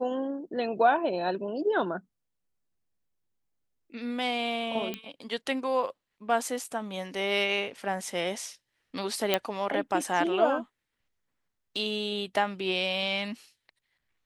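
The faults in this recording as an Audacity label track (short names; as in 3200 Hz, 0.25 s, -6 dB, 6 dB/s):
4.940000	4.940000	pop -18 dBFS
6.640000	6.640000	gap 3.8 ms
9.340000	9.340000	pop -9 dBFS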